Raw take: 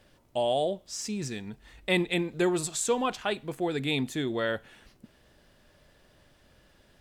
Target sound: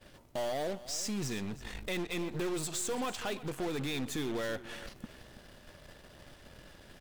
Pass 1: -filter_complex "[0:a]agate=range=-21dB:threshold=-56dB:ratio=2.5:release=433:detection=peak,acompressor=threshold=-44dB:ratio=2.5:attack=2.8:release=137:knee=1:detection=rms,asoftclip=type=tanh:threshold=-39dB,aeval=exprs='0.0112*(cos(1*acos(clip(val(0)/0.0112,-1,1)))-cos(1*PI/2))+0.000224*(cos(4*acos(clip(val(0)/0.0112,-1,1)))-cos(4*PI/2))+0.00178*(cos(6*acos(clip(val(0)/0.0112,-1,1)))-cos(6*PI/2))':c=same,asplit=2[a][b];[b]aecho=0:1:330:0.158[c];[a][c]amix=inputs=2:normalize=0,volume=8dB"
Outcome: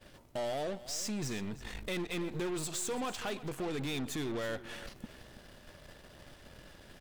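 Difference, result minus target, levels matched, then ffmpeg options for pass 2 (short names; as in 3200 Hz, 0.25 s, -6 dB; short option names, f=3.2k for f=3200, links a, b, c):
soft clip: distortion +15 dB
-filter_complex "[0:a]agate=range=-21dB:threshold=-56dB:ratio=2.5:release=433:detection=peak,acompressor=threshold=-44dB:ratio=2.5:attack=2.8:release=137:knee=1:detection=rms,asoftclip=type=tanh:threshold=-29dB,aeval=exprs='0.0112*(cos(1*acos(clip(val(0)/0.0112,-1,1)))-cos(1*PI/2))+0.000224*(cos(4*acos(clip(val(0)/0.0112,-1,1)))-cos(4*PI/2))+0.00178*(cos(6*acos(clip(val(0)/0.0112,-1,1)))-cos(6*PI/2))':c=same,asplit=2[a][b];[b]aecho=0:1:330:0.158[c];[a][c]amix=inputs=2:normalize=0,volume=8dB"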